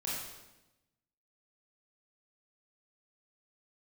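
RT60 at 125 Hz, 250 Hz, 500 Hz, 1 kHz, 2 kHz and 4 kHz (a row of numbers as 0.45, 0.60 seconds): 1.3, 1.2, 1.1, 0.95, 0.90, 0.90 seconds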